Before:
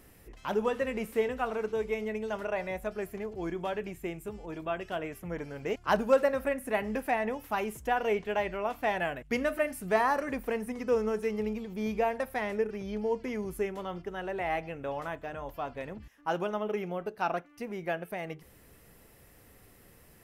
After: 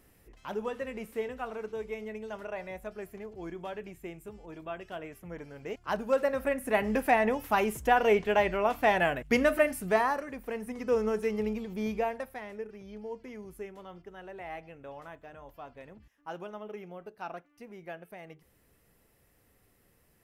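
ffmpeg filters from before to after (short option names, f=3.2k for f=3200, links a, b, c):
-af "volume=13.5dB,afade=t=in:st=6.01:d=1.06:silence=0.298538,afade=t=out:st=9.57:d=0.74:silence=0.237137,afade=t=in:st=10.31:d=0.75:silence=0.375837,afade=t=out:st=11.75:d=0.66:silence=0.298538"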